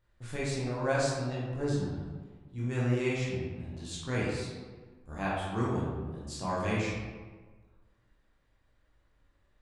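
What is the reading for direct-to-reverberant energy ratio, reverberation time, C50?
−7.5 dB, 1.4 s, −1.0 dB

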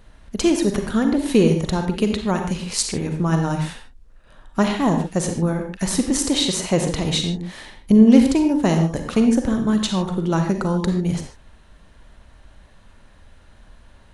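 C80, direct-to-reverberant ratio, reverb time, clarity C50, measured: 8.5 dB, 4.5 dB, non-exponential decay, 5.5 dB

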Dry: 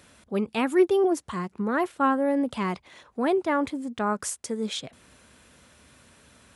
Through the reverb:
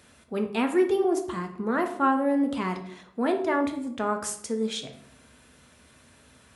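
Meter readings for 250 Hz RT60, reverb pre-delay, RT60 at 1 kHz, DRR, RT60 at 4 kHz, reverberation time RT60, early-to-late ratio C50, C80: 0.90 s, 3 ms, 0.65 s, 4.5 dB, 0.45 s, 0.65 s, 9.5 dB, 13.0 dB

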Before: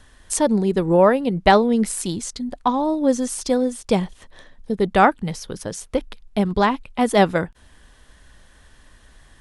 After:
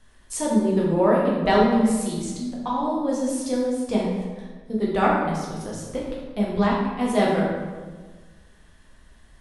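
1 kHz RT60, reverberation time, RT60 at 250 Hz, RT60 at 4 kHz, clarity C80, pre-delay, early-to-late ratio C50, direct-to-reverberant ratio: 1.3 s, 1.4 s, 1.7 s, 0.90 s, 3.0 dB, 7 ms, 0.5 dB, −5.0 dB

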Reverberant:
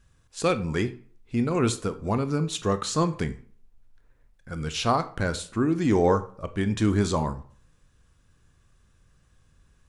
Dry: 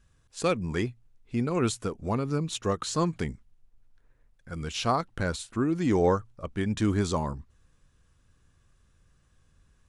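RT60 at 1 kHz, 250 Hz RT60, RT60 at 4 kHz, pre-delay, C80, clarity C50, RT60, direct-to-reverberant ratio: 0.50 s, 0.45 s, 0.35 s, 19 ms, 19.5 dB, 15.5 dB, 0.50 s, 10.5 dB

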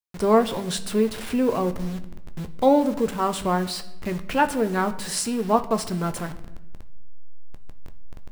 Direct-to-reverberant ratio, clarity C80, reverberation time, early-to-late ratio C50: 8.0 dB, 17.5 dB, 0.95 s, 14.5 dB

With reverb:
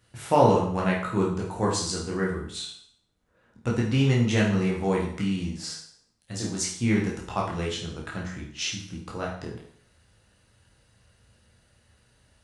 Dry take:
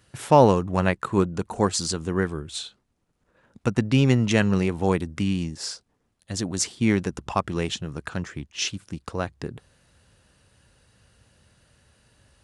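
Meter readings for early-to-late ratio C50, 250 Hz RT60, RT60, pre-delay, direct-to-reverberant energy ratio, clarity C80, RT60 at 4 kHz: 4.5 dB, 0.60 s, 0.60 s, 12 ms, −3.5 dB, 8.5 dB, 0.60 s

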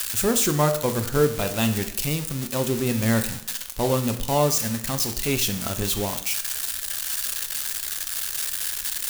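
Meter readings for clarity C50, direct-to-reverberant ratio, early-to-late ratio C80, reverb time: 11.0 dB, 7.0 dB, 14.0 dB, 0.70 s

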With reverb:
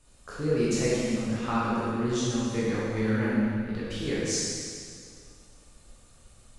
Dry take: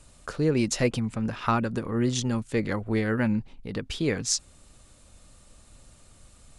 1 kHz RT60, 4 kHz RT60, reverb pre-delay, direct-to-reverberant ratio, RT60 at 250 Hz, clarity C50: 2.2 s, 2.1 s, 7 ms, −8.5 dB, 2.1 s, −3.5 dB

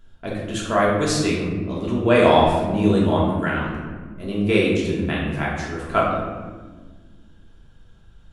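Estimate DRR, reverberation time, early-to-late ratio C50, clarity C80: −5.0 dB, 1.5 s, 1.0 dB, 3.5 dB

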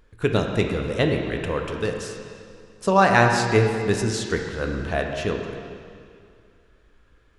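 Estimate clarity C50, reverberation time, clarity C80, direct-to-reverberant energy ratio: 4.0 dB, 2.3 s, 5.0 dB, 2.5 dB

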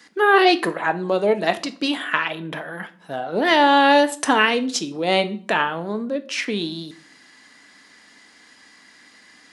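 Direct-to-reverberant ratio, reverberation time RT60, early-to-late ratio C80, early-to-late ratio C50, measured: 10.0 dB, 0.45 s, 21.5 dB, 17.0 dB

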